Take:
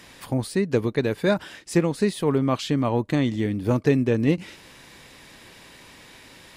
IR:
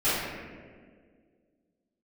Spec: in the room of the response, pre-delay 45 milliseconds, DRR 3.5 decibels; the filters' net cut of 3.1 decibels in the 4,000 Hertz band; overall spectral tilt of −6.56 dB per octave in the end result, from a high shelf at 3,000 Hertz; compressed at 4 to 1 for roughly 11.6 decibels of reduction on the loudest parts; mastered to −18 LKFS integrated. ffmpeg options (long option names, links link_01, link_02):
-filter_complex "[0:a]highshelf=frequency=3000:gain=3.5,equalizer=frequency=4000:width_type=o:gain=-6.5,acompressor=threshold=-29dB:ratio=4,asplit=2[link_01][link_02];[1:a]atrim=start_sample=2205,adelay=45[link_03];[link_02][link_03]afir=irnorm=-1:irlink=0,volume=-18dB[link_04];[link_01][link_04]amix=inputs=2:normalize=0,volume=13dB"